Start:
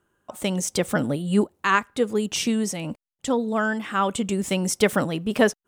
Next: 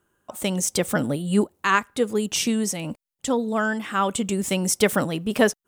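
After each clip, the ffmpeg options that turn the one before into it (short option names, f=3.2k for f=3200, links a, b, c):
-af "highshelf=f=7.4k:g=7"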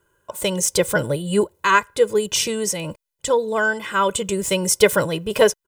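-af "aecho=1:1:2:0.81,volume=2dB"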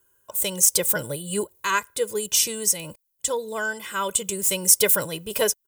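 -af "aemphasis=mode=production:type=75fm,volume=-8dB"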